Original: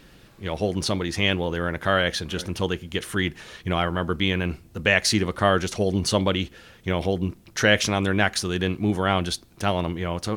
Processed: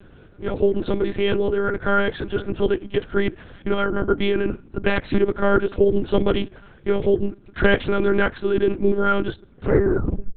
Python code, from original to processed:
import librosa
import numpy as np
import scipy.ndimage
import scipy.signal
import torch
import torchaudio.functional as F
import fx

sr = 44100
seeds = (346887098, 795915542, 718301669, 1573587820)

y = fx.tape_stop_end(x, sr, length_s=0.96)
y = fx.low_shelf(y, sr, hz=200.0, db=11.5)
y = (np.mod(10.0 ** (5.0 / 20.0) * y + 1.0, 2.0) - 1.0) / 10.0 ** (5.0 / 20.0)
y = fx.small_body(y, sr, hz=(400.0, 1400.0), ring_ms=20, db=15)
y = fx.lpc_monotone(y, sr, seeds[0], pitch_hz=200.0, order=8)
y = y * librosa.db_to_amplitude(-6.5)